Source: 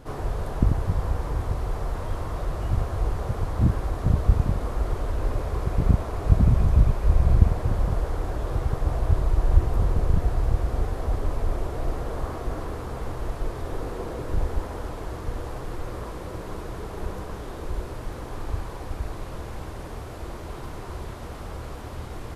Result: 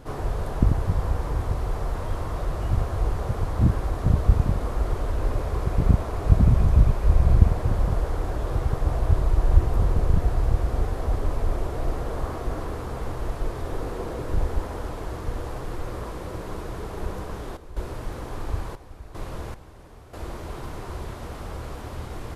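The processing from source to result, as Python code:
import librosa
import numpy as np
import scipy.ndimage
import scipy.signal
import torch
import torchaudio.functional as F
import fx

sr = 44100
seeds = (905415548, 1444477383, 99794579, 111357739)

y = fx.step_gate(x, sr, bpm=76, pattern='x...x.xxxxx..x', floor_db=-12.0, edge_ms=4.5, at=(17.52, 20.18), fade=0.02)
y = y * 10.0 ** (1.0 / 20.0)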